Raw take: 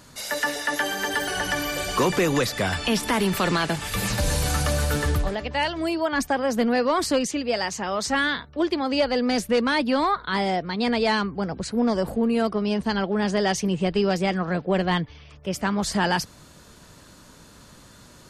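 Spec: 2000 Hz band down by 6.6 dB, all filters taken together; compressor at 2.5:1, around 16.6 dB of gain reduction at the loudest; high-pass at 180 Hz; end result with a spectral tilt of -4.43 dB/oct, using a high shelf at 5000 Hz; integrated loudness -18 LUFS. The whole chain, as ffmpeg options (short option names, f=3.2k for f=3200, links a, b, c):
-af "highpass=180,equalizer=f=2k:t=o:g=-7.5,highshelf=f=5k:g=-7,acompressor=threshold=-45dB:ratio=2.5,volume=23dB"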